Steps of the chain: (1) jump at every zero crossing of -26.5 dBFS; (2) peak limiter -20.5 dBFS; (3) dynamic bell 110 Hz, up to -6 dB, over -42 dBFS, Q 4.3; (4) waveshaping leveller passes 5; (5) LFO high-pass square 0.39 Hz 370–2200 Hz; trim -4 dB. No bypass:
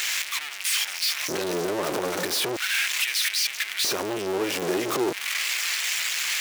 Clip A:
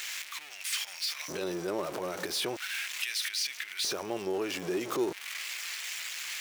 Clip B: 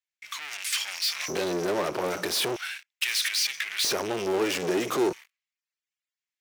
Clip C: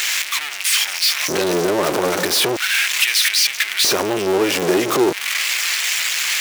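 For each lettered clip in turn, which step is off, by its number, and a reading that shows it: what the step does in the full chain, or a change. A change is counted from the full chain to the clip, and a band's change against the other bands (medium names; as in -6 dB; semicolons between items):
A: 4, crest factor change +3.5 dB; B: 1, distortion -10 dB; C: 2, mean gain reduction 2.5 dB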